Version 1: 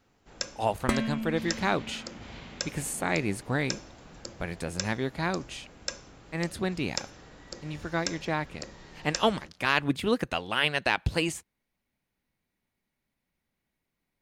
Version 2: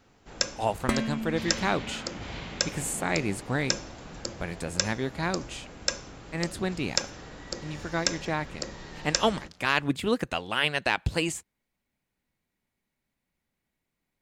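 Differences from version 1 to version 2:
speech: add peaking EQ 7.5 kHz +6 dB 0.23 oct; first sound +6.5 dB

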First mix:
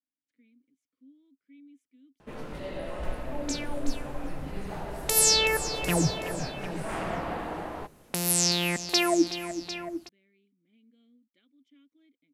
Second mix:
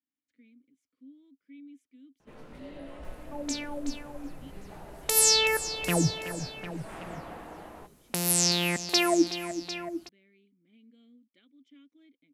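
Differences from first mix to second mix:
speech +4.5 dB; first sound -9.5 dB

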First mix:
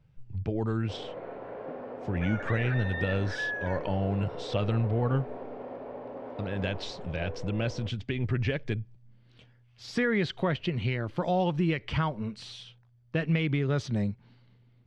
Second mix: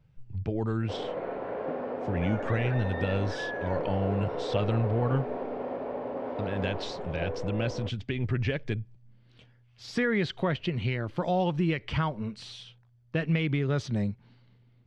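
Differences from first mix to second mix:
first sound +6.0 dB; second sound -5.0 dB

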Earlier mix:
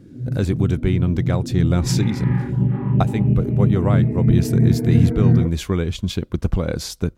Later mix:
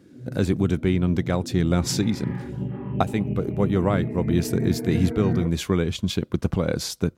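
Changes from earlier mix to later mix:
speech: add high-pass 110 Hz 12 dB/octave; first sound: add high-pass 520 Hz 6 dB/octave; second sound -7.5 dB

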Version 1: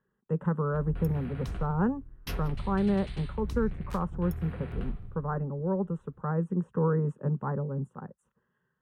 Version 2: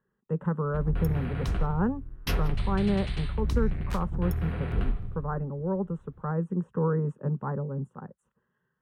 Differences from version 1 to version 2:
background +7.5 dB; master: add treble shelf 7.2 kHz -4 dB

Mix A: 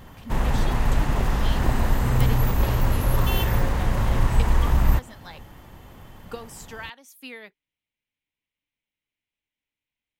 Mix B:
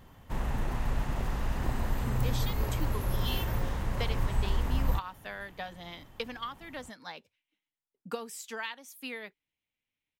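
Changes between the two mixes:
speech: entry +1.80 s; background -9.5 dB

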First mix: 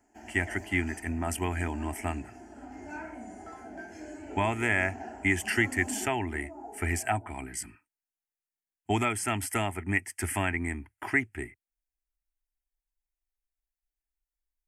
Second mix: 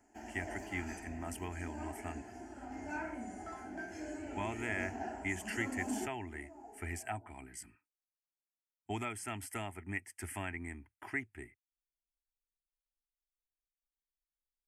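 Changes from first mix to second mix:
speech -11.5 dB; second sound -9.5 dB

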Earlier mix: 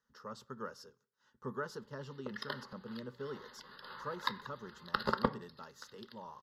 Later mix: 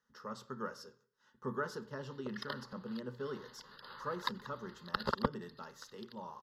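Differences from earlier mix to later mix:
speech: send +10.5 dB; background: send off

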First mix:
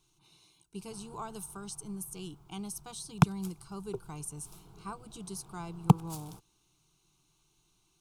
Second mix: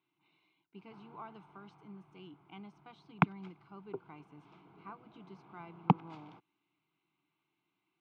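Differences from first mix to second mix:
speech -6.5 dB; master: add cabinet simulation 230–2800 Hz, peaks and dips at 270 Hz +7 dB, 440 Hz -5 dB, 2.1 kHz +9 dB

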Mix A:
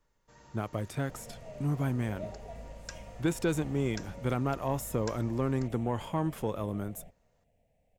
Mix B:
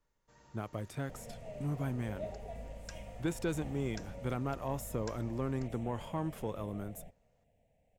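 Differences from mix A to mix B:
speech -5.5 dB; first sound -5.5 dB

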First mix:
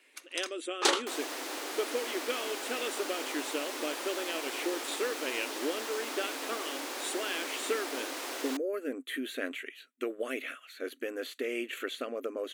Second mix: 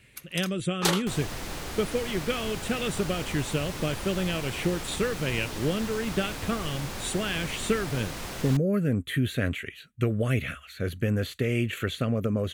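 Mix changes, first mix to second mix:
speech +4.5 dB; first sound: remove Savitzky-Golay filter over 9 samples; master: remove brick-wall FIR high-pass 250 Hz

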